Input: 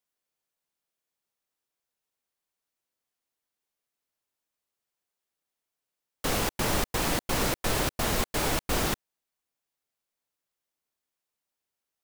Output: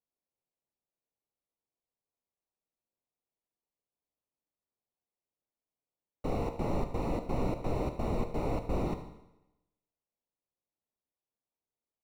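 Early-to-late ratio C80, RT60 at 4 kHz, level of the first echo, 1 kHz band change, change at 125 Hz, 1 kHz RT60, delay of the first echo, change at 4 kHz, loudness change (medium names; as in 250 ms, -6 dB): 12.0 dB, 0.90 s, -14.0 dB, -6.5 dB, -1.5 dB, 0.90 s, 75 ms, -22.5 dB, -6.5 dB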